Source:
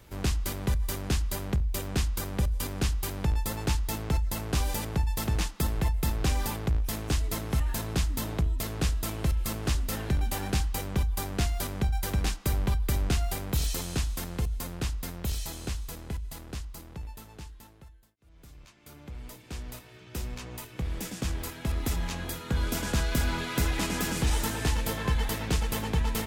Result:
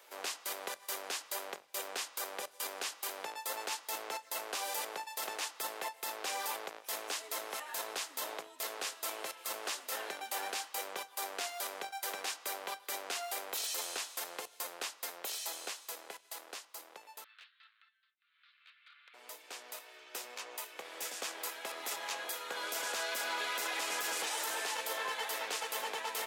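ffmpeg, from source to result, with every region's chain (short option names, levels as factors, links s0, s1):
-filter_complex "[0:a]asettb=1/sr,asplit=3[s0][s1][s2];[s0]atrim=end=17.244[s3];[s1]atrim=start=17.24:end=19.14,asetpts=PTS-STARTPTS,afade=t=in:d=0.004:c=qsin,afade=t=out:st=1.896:d=0.004:c=qsin,asuperpass=centerf=2300:order=12:qfactor=0.79,aeval=exprs='clip(val(0),-1,0.00251)':c=same[s4];[s2]atrim=start=19.136[s5];[s3][s4]acrossfade=d=0.004:c1=hsin:c2=qsin[s6];[s6][s5]acrossfade=d=0.004:c1=qsin:c2=hsin,highpass=f=500:w=0.5412,highpass=f=500:w=1.3066,alimiter=level_in=1.41:limit=0.0631:level=0:latency=1:release=18,volume=0.708"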